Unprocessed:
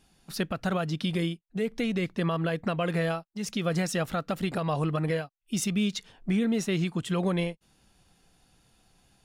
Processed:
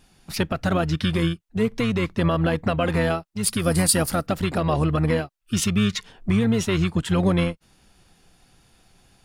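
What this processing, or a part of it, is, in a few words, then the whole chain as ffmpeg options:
octave pedal: -filter_complex "[0:a]asettb=1/sr,asplit=3[a][b][c];[a]atrim=end=3.434[d];[b]atrim=start=3.43:end=4.27,asetpts=PTS-STARTPTS,afade=t=in:d=0.004:c=qsin,afade=t=out:st=0.836:d=0.004:c=qsin,highshelf=f=7.4k:t=q:w=3:g=10.5[e];[c]atrim=start=4.266[f];[d][e]acrossfade=d=0.004:c1=hsin:c2=qsin[g];[g][f]acrossfade=d=0.004:c1=qsin:c2=hsin,asplit=2[h][i];[i]asetrate=22050,aresample=44100,atempo=2,volume=-6dB[j];[h][j]amix=inputs=2:normalize=0,volume=5.5dB"

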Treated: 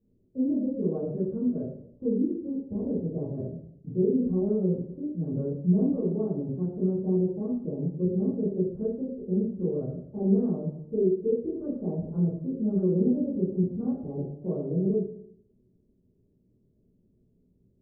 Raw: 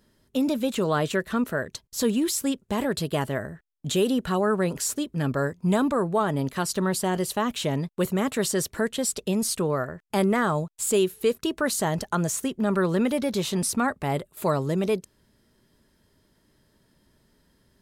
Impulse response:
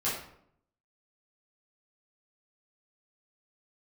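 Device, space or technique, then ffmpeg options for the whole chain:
next room: -filter_complex "[0:a]lowpass=f=440:w=0.5412,lowpass=f=440:w=1.3066[a];[1:a]atrim=start_sample=2205[b];[a][b]afir=irnorm=-1:irlink=0,volume=-9dB"

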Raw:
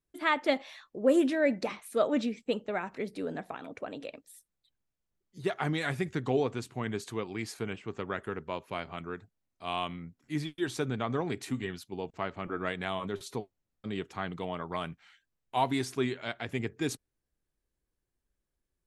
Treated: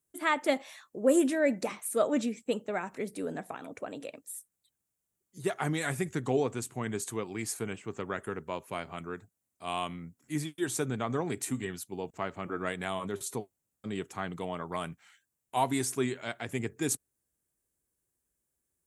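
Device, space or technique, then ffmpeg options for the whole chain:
budget condenser microphone: -af "highpass=73,highshelf=f=6k:t=q:w=1.5:g=10"

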